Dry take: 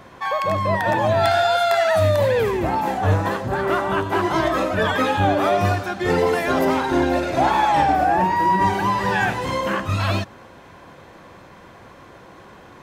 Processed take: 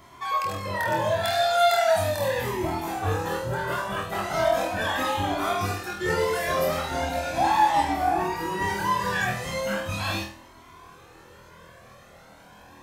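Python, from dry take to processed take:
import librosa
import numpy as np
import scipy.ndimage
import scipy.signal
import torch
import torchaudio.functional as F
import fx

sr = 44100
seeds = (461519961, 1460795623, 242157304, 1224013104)

y = fx.high_shelf(x, sr, hz=5400.0, db=11.0)
y = fx.room_flutter(y, sr, wall_m=4.2, rt60_s=0.45)
y = fx.comb_cascade(y, sr, direction='rising', hz=0.38)
y = y * librosa.db_to_amplitude(-4.0)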